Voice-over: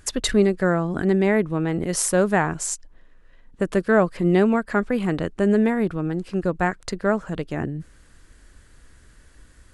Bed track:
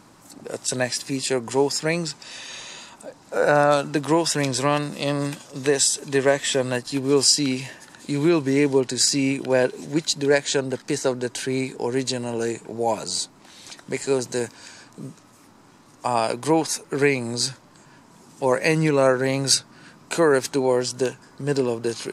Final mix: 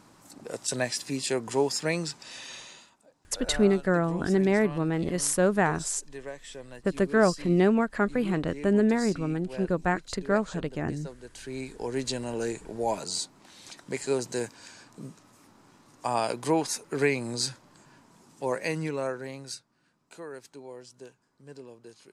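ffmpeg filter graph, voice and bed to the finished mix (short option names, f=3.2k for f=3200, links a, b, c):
-filter_complex "[0:a]adelay=3250,volume=-4dB[a];[1:a]volume=10.5dB,afade=t=out:st=2.49:d=0.48:silence=0.158489,afade=t=in:st=11.21:d=0.92:silence=0.16788,afade=t=out:st=17.79:d=1.83:silence=0.125893[b];[a][b]amix=inputs=2:normalize=0"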